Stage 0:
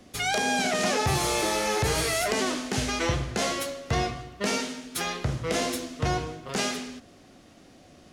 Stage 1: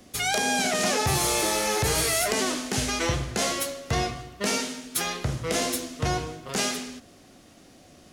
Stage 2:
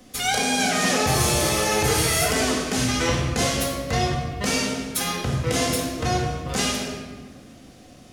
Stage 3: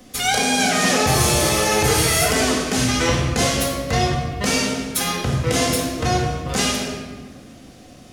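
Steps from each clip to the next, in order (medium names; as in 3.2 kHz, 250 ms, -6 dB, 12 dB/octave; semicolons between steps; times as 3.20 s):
treble shelf 7.4 kHz +9.5 dB
simulated room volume 1300 m³, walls mixed, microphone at 2 m
trim +3.5 dB; AAC 192 kbps 48 kHz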